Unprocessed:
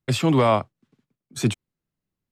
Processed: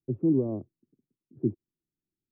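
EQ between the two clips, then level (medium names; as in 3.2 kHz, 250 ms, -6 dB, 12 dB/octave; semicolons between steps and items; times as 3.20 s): four-pole ladder low-pass 390 Hz, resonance 60%; 0.0 dB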